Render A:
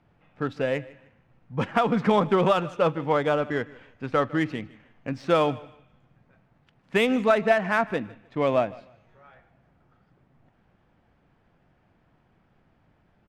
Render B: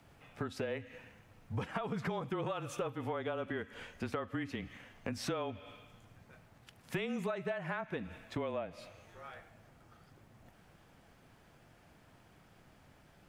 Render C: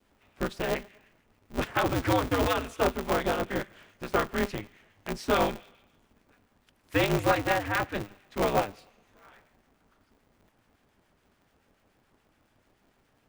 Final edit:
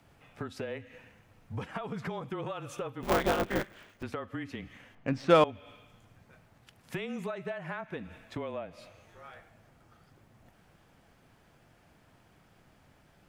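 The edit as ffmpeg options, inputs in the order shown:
ffmpeg -i take0.wav -i take1.wav -i take2.wav -filter_complex "[1:a]asplit=3[link_01][link_02][link_03];[link_01]atrim=end=3.032[link_04];[2:a]atrim=start=3.028:end=4.032[link_05];[link_02]atrim=start=4.028:end=4.952[link_06];[0:a]atrim=start=4.948:end=5.442[link_07];[link_03]atrim=start=5.438[link_08];[link_04][link_05]acrossfade=duration=0.004:curve1=hsin:curve2=hsin[link_09];[link_09][link_06]acrossfade=duration=0.004:curve1=hsin:curve2=hsin[link_10];[link_10][link_07]acrossfade=duration=0.004:curve1=hsin:curve2=hsin[link_11];[link_11][link_08]acrossfade=duration=0.004:curve1=hsin:curve2=hsin" out.wav

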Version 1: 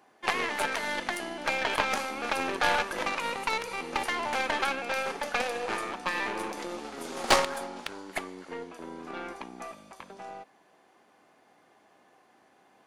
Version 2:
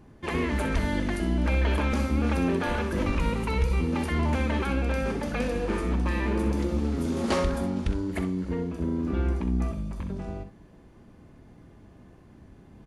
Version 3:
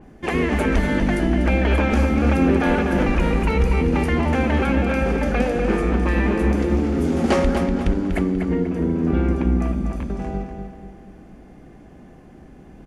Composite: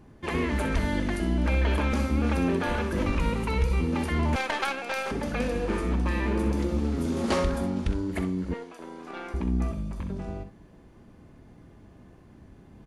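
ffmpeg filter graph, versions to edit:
ffmpeg -i take0.wav -i take1.wav -filter_complex "[0:a]asplit=2[link_01][link_02];[1:a]asplit=3[link_03][link_04][link_05];[link_03]atrim=end=4.362[link_06];[link_01]atrim=start=4.358:end=5.112[link_07];[link_04]atrim=start=5.108:end=8.542[link_08];[link_02]atrim=start=8.538:end=9.342[link_09];[link_05]atrim=start=9.338[link_10];[link_06][link_07]acrossfade=duration=0.004:curve1=hsin:curve2=hsin[link_11];[link_11][link_08]acrossfade=duration=0.004:curve1=hsin:curve2=hsin[link_12];[link_12][link_09]acrossfade=duration=0.004:curve1=hsin:curve2=hsin[link_13];[link_13][link_10]acrossfade=duration=0.004:curve1=hsin:curve2=hsin" out.wav

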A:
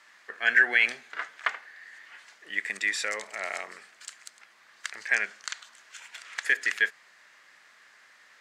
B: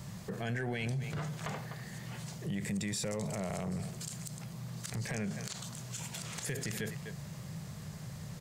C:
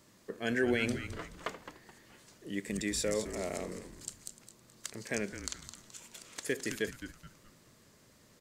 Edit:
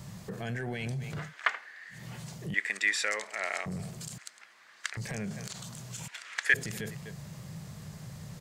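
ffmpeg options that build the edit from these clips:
ffmpeg -i take0.wav -i take1.wav -filter_complex "[0:a]asplit=4[link_01][link_02][link_03][link_04];[1:a]asplit=5[link_05][link_06][link_07][link_08][link_09];[link_05]atrim=end=1.34[link_10];[link_01]atrim=start=1.18:end=2.04[link_11];[link_06]atrim=start=1.88:end=2.542[link_12];[link_02]atrim=start=2.538:end=3.662[link_13];[link_07]atrim=start=3.658:end=4.182[link_14];[link_03]atrim=start=4.178:end=4.972[link_15];[link_08]atrim=start=4.968:end=6.082[link_16];[link_04]atrim=start=6.078:end=6.542[link_17];[link_09]atrim=start=6.538[link_18];[link_10][link_11]acrossfade=duration=0.16:curve1=tri:curve2=tri[link_19];[link_19][link_12]acrossfade=duration=0.16:curve1=tri:curve2=tri[link_20];[link_20][link_13]acrossfade=duration=0.004:curve1=hsin:curve2=hsin[link_21];[link_21][link_14]acrossfade=duration=0.004:curve1=hsin:curve2=hsin[link_22];[link_22][link_15]acrossfade=duration=0.004:curve1=hsin:curve2=hsin[link_23];[link_23][link_16]acrossfade=duration=0.004:curve1=hsin:curve2=hsin[link_24];[link_24][link_17]acrossfade=duration=0.004:curve1=hsin:curve2=hsin[link_25];[link_25][link_18]acrossfade=duration=0.004:curve1=hsin:curve2=hsin" out.wav

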